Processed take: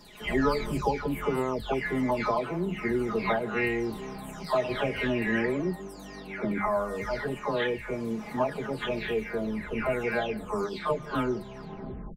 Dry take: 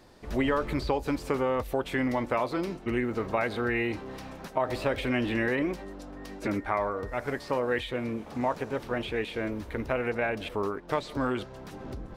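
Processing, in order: delay that grows with frequency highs early, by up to 519 ms; peaking EQ 98 Hz +6.5 dB 1.9 oct; hum notches 50/100/150/200 Hz; comb 4.8 ms, depth 74%

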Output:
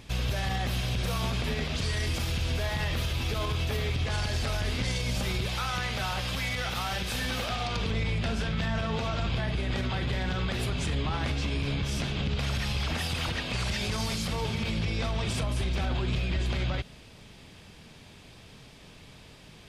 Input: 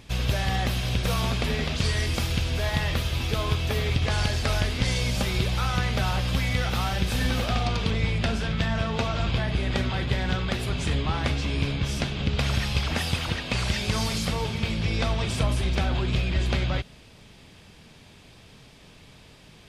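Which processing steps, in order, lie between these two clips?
5.46–7.76 s: bass shelf 430 Hz -8 dB; peak limiter -21 dBFS, peak gain reduction 9 dB

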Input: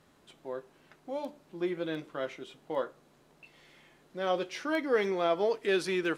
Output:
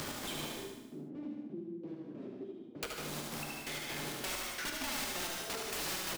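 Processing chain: jump at every zero crossing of -40 dBFS; upward compressor, threshold -39 dBFS; trance gate "x.xx.x.." 131 bpm -24 dB; integer overflow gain 32 dB; 0.57–2.83 s: Butterworth band-pass 260 Hz, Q 1.3; feedback delay 74 ms, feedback 49%, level -5 dB; gated-style reverb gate 220 ms flat, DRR 1 dB; three bands compressed up and down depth 70%; trim -3 dB

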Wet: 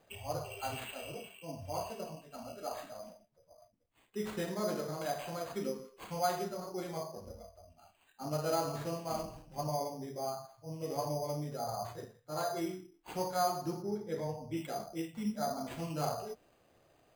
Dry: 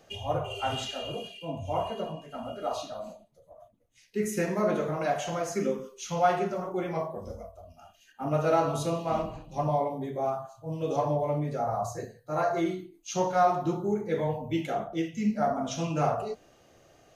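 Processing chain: sample-and-hold 8×; 13.82–14.57 s: treble shelf 4.4 kHz -10.5 dB; trim -8.5 dB

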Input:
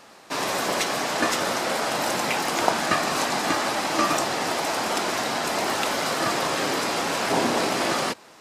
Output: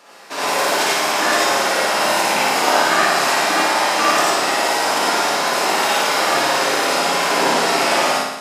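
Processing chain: high-pass 280 Hz 12 dB/octave; flutter echo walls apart 9.8 m, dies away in 0.94 s; gated-style reverb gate 120 ms rising, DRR -4.5 dB

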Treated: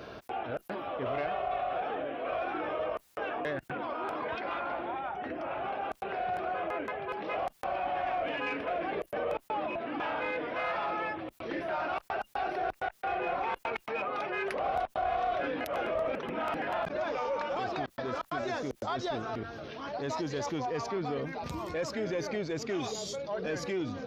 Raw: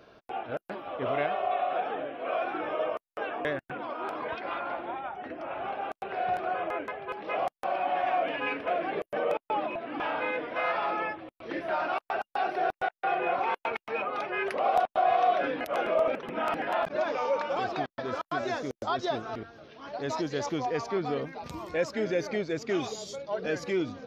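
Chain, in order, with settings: single-diode clipper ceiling -19.5 dBFS; high-pass 45 Hz 12 dB/octave; bass shelf 100 Hz +6 dB; level flattener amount 50%; trim -6.5 dB

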